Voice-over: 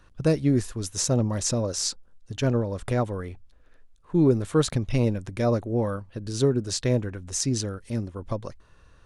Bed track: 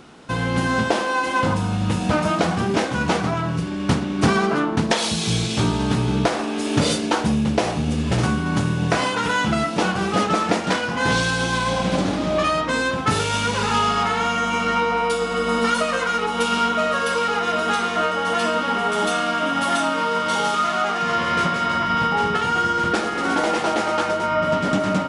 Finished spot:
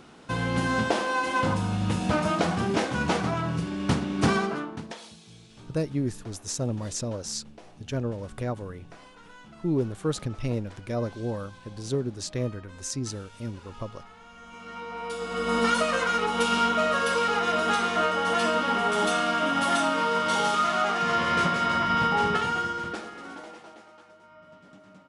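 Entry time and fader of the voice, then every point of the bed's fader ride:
5.50 s, -6.0 dB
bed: 4.34 s -5 dB
5.25 s -29 dB
14.25 s -29 dB
15.58 s -3.5 dB
22.34 s -3.5 dB
23.98 s -31.5 dB

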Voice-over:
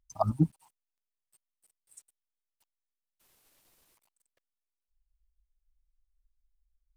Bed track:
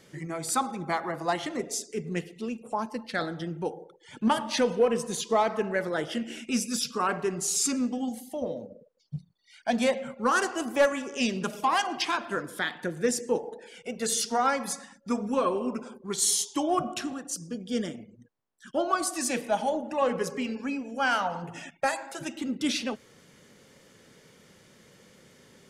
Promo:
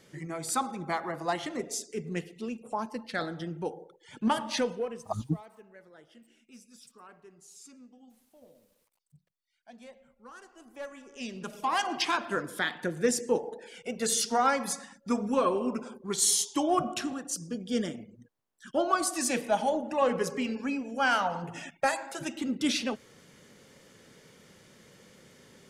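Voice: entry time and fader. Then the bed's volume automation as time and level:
4.90 s, -5.5 dB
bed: 4.57 s -2.5 dB
5.32 s -25 dB
10.45 s -25 dB
11.93 s 0 dB

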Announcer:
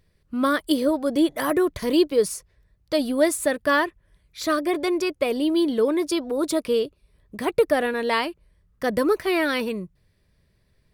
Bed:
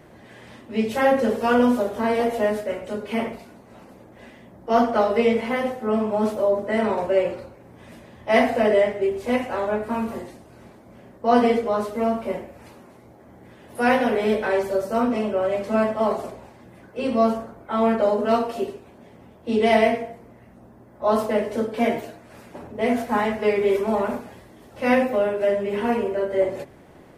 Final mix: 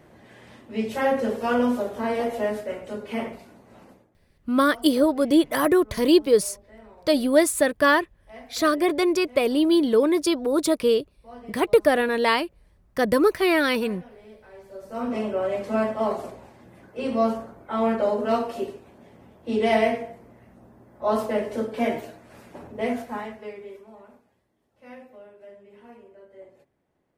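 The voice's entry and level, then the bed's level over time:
4.15 s, +2.0 dB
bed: 3.91 s -4 dB
4.21 s -26.5 dB
14.51 s -26.5 dB
15.16 s -3 dB
22.80 s -3 dB
23.91 s -25.5 dB

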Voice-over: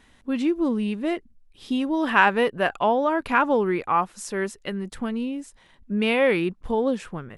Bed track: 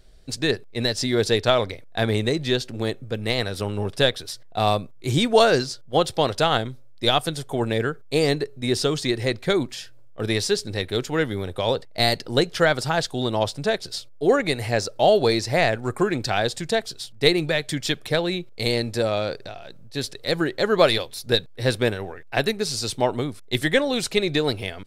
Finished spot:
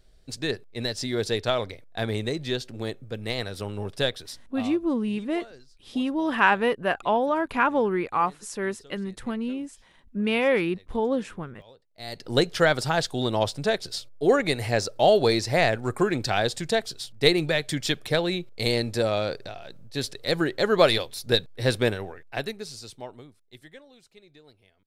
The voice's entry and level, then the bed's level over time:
4.25 s, -2.0 dB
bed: 4.46 s -6 dB
4.84 s -29.5 dB
11.88 s -29.5 dB
12.31 s -1.5 dB
21.93 s -1.5 dB
24.01 s -31.5 dB

